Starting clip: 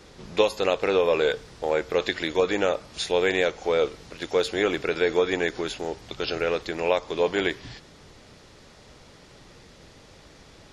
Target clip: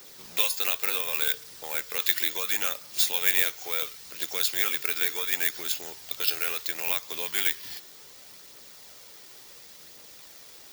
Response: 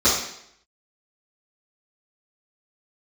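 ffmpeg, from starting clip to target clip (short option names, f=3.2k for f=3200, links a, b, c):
-filter_complex "[0:a]aphaser=in_gain=1:out_gain=1:delay=2.9:decay=0.25:speed=0.7:type=triangular,acrossover=split=180|1100[a][b][c];[b]acompressor=threshold=-36dB:ratio=6[d];[c]acrusher=bits=2:mode=log:mix=0:aa=0.000001[e];[a][d][e]amix=inputs=3:normalize=0,aemphasis=mode=production:type=riaa,volume=-4.5dB"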